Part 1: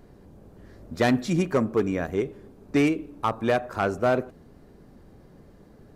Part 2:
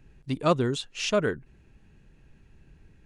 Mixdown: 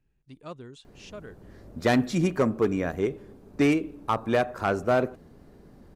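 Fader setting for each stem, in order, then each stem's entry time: −0.5, −18.0 decibels; 0.85, 0.00 seconds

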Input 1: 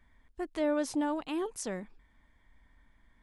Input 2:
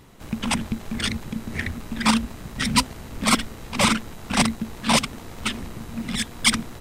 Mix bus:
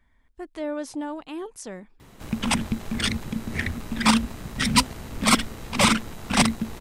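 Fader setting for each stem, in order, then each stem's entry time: −0.5, +0.5 decibels; 0.00, 2.00 seconds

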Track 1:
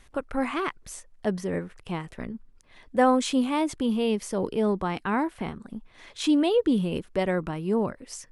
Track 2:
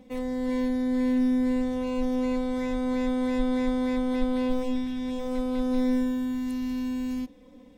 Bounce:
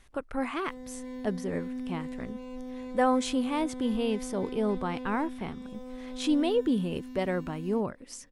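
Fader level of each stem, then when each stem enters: −4.0, −13.0 decibels; 0.00, 0.55 seconds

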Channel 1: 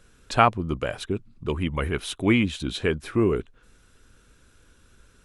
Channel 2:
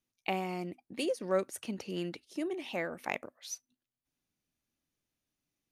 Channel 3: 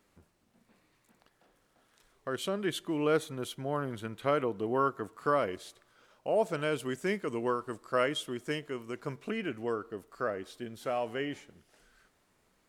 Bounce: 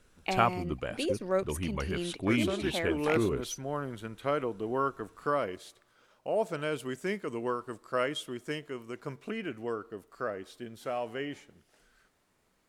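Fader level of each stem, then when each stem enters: −8.0, +1.0, −1.5 decibels; 0.00, 0.00, 0.00 seconds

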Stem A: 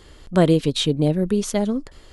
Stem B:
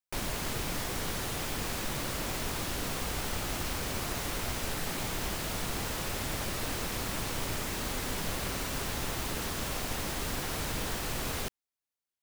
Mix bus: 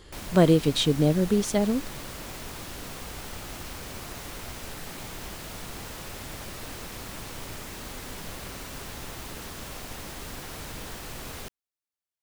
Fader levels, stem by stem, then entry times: −2.5, −4.5 decibels; 0.00, 0.00 seconds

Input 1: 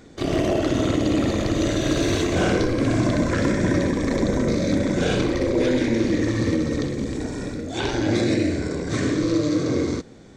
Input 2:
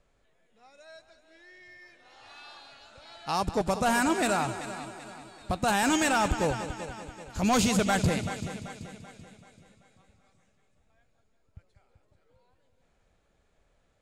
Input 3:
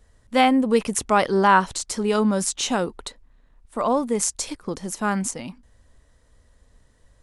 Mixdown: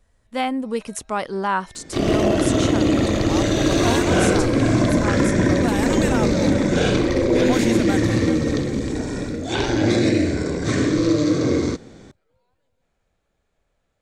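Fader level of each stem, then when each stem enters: +3.0, −2.5, −6.0 decibels; 1.75, 0.00, 0.00 seconds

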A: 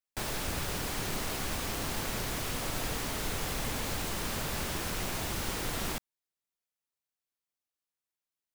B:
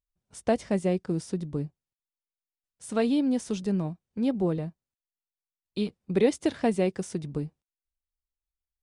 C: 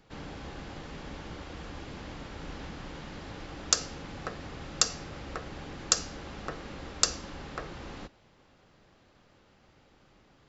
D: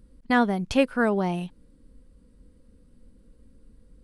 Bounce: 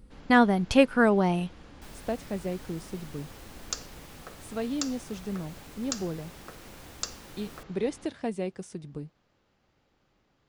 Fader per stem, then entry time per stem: −15.0, −7.0, −9.0, +1.5 decibels; 1.65, 1.60, 0.00, 0.00 seconds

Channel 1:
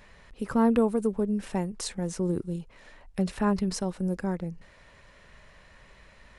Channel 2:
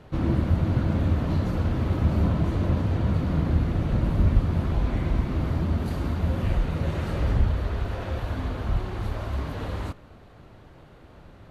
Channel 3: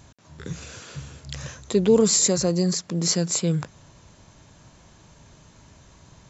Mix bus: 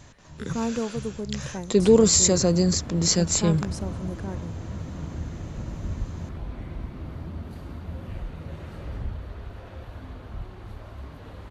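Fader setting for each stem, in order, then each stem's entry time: −5.5, −10.5, +1.0 decibels; 0.00, 1.65, 0.00 seconds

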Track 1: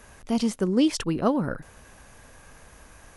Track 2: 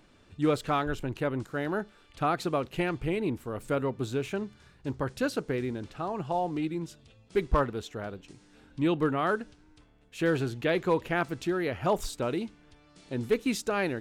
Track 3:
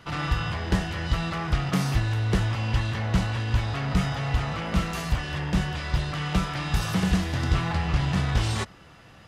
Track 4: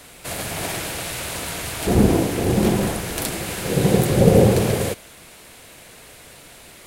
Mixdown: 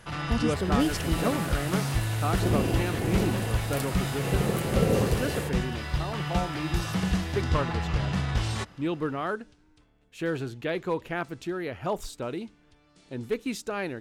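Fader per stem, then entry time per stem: −5.5, −3.0, −3.5, −11.0 decibels; 0.00, 0.00, 0.00, 0.55 seconds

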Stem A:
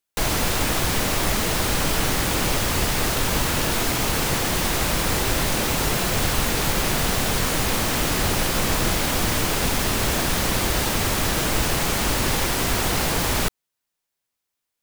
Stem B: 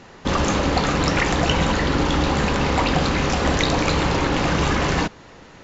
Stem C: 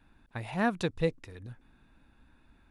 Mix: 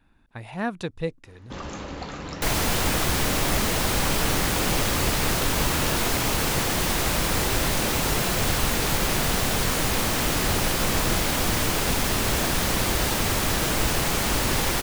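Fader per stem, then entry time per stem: −1.5, −15.0, 0.0 decibels; 2.25, 1.25, 0.00 seconds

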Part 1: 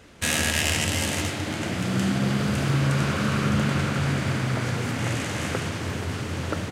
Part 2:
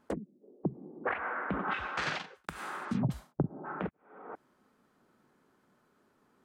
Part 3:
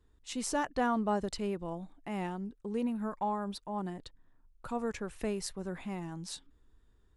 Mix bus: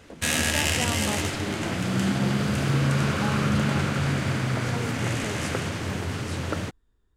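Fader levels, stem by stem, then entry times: −0.5, −9.0, −2.5 decibels; 0.00, 0.00, 0.00 seconds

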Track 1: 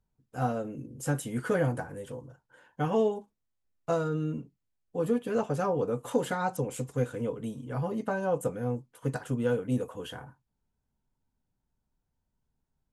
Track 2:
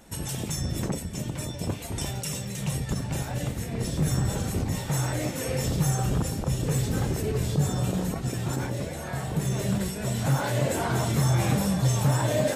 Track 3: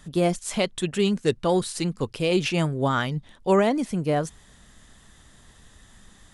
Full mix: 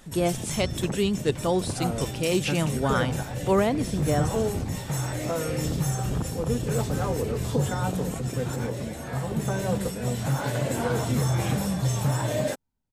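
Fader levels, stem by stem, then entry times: −1.5, −2.0, −2.5 decibels; 1.40, 0.00, 0.00 seconds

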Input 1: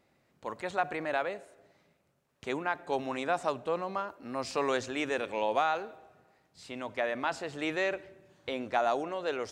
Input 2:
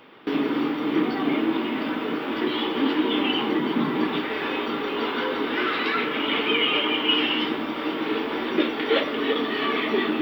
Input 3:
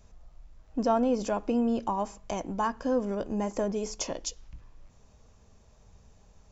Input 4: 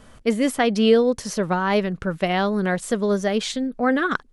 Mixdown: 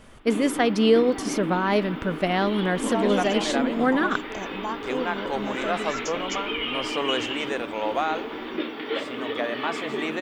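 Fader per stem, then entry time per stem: +2.5, −7.0, −3.0, −2.0 decibels; 2.40, 0.00, 2.05, 0.00 seconds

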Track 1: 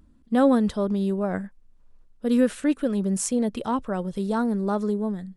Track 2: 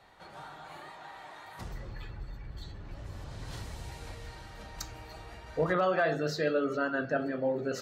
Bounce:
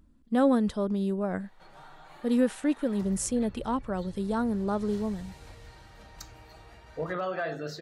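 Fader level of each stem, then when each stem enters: −4.0, −4.5 decibels; 0.00, 1.40 seconds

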